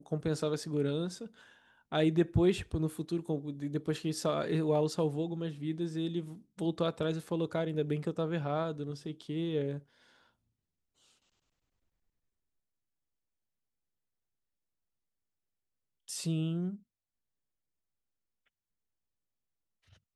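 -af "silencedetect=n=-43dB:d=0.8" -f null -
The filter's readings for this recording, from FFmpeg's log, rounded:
silence_start: 9.79
silence_end: 16.08 | silence_duration: 6.29
silence_start: 16.76
silence_end: 20.16 | silence_duration: 3.40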